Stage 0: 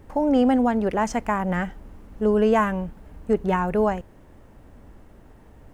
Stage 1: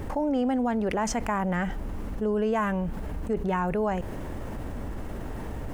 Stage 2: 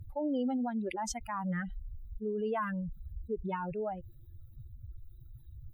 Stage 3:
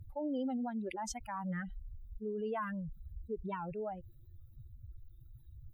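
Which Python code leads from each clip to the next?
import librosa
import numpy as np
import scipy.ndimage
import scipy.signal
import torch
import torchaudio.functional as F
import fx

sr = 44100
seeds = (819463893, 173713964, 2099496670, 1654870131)

y1 = fx.env_flatten(x, sr, amount_pct=70)
y1 = y1 * 10.0 ** (-8.0 / 20.0)
y2 = fx.bin_expand(y1, sr, power=3.0)
y2 = y2 * 10.0 ** (-2.5 / 20.0)
y3 = fx.record_warp(y2, sr, rpm=78.0, depth_cents=100.0)
y3 = y3 * 10.0 ** (-4.0 / 20.0)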